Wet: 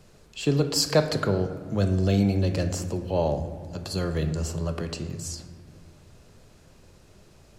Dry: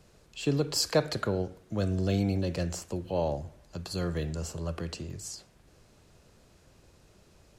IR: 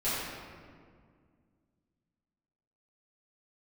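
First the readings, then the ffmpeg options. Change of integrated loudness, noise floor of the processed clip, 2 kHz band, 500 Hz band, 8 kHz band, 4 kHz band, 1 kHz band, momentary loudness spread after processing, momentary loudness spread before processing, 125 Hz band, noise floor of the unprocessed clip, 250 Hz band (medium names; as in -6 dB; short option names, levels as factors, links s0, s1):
+5.0 dB, -54 dBFS, +4.5 dB, +5.0 dB, +4.0 dB, +4.5 dB, +4.5 dB, 12 LU, 12 LU, +6.0 dB, -61 dBFS, +5.5 dB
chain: -filter_complex "[0:a]asplit=2[s0][s1];[1:a]atrim=start_sample=2205,lowshelf=f=250:g=7[s2];[s1][s2]afir=irnorm=-1:irlink=0,volume=0.106[s3];[s0][s3]amix=inputs=2:normalize=0,volume=1.5"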